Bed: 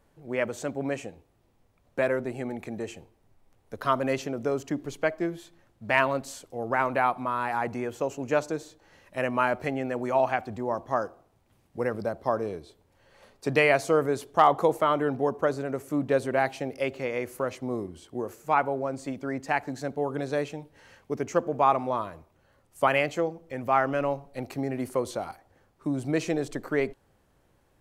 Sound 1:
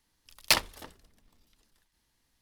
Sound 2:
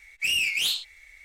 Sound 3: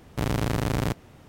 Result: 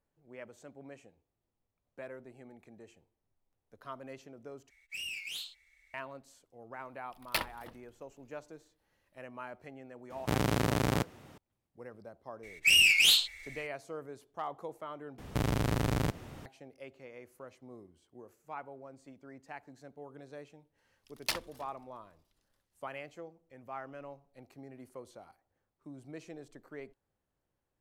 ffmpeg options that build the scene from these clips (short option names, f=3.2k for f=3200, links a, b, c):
-filter_complex "[2:a]asplit=2[a][b];[1:a]asplit=2[c][d];[3:a]asplit=2[e][f];[0:a]volume=-19.5dB[g];[a]acrusher=bits=8:mode=log:mix=0:aa=0.000001[h];[c]equalizer=f=6.4k:w=1.1:g=-12[i];[e]highpass=f=140:p=1[j];[b]dynaudnorm=f=130:g=3:m=3.5dB[k];[f]alimiter=level_in=21dB:limit=-1dB:release=50:level=0:latency=1[l];[g]asplit=3[m][n][o];[m]atrim=end=4.704[p];[h]atrim=end=1.24,asetpts=PTS-STARTPTS,volume=-15.5dB[q];[n]atrim=start=5.936:end=15.184[r];[l]atrim=end=1.28,asetpts=PTS-STARTPTS,volume=-18dB[s];[o]atrim=start=16.456[t];[i]atrim=end=2.41,asetpts=PTS-STARTPTS,volume=-6dB,afade=t=in:d=0.004:c=hsin,afade=t=out:st=2.406:d=0.004:c=hsin,adelay=6840[u];[j]atrim=end=1.28,asetpts=PTS-STARTPTS,volume=-1.5dB,afade=t=in:d=0.004:c=hsin,afade=t=out:st=1.276:d=0.004:c=hsin,adelay=445410S[v];[k]atrim=end=1.24,asetpts=PTS-STARTPTS,volume=-1dB,afade=t=in:d=0.004:c=hsin,afade=t=out:st=1.236:d=0.004:c=hsin,adelay=12430[w];[d]atrim=end=2.41,asetpts=PTS-STARTPTS,volume=-10.5dB,afade=t=in:d=0.004:c=hsin,afade=t=out:st=2.406:d=0.004:c=hsin,adelay=20780[x];[p][q]acrossfade=d=0.004:c1=hsin:c2=hsin[y];[y][r]acrossfade=d=0.004:c1=hsin:c2=hsin[z];[z][s]acrossfade=d=0.004:c1=hsin:c2=hsin[aa];[aa][t]acrossfade=d=0.004:c1=hsin:c2=hsin[ab];[ab][u][v][w][x]amix=inputs=5:normalize=0"